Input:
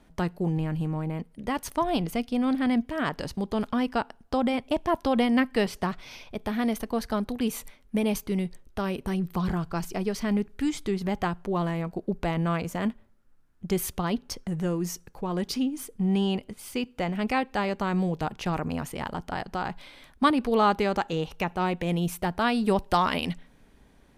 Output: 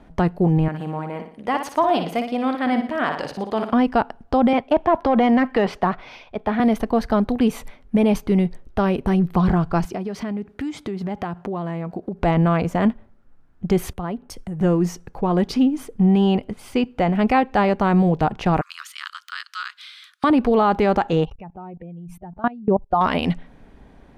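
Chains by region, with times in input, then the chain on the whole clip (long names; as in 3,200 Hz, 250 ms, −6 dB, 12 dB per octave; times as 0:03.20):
0:00.68–0:03.73: high-pass filter 600 Hz 6 dB per octave + flutter between parallel walls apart 10.1 metres, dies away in 0.48 s
0:04.53–0:06.60: mid-hump overdrive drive 14 dB, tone 1,700 Hz, clips at −11 dBFS + multiband upward and downward expander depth 70%
0:09.85–0:12.22: high-pass filter 84 Hz + downward compressor, threshold −34 dBFS
0:13.93–0:14.61: high shelf with overshoot 7,000 Hz +7 dB, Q 1.5 + downward compressor 5 to 1, threshold −35 dBFS + multiband upward and downward expander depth 100%
0:18.61–0:20.24: de-essing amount 85% + Butterworth high-pass 1,200 Hz 72 dB per octave + high shelf with overshoot 2,900 Hz +7 dB, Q 1.5
0:21.25–0:23.01: expanding power law on the bin magnitudes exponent 1.8 + output level in coarse steps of 23 dB
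whole clip: low-pass filter 1,700 Hz 6 dB per octave; parametric band 730 Hz +3.5 dB 0.34 octaves; boost into a limiter +18 dB; level −8 dB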